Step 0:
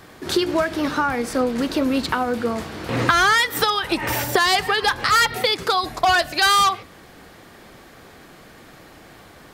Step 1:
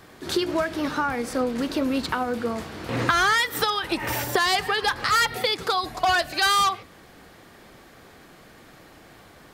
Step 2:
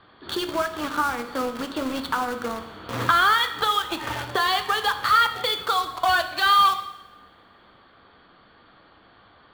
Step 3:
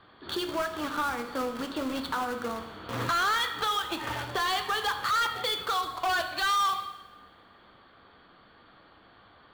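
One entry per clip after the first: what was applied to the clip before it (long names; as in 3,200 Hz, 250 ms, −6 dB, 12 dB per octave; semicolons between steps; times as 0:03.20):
echo ahead of the sound 85 ms −21 dB; level −4 dB
Chebyshev low-pass with heavy ripple 4,600 Hz, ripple 9 dB; in parallel at −5.5 dB: bit reduction 5 bits; on the sum: coupled-rooms reverb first 0.9 s, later 2.5 s, from −24 dB, DRR 7.5 dB
soft clipping −20.5 dBFS, distortion −10 dB; level −2.5 dB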